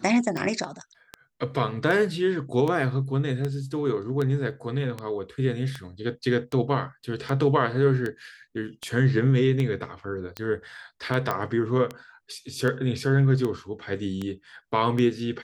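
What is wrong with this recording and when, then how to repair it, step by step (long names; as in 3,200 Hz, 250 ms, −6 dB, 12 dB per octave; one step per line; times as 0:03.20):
scratch tick 78 rpm
0:11.31: click −13 dBFS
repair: click removal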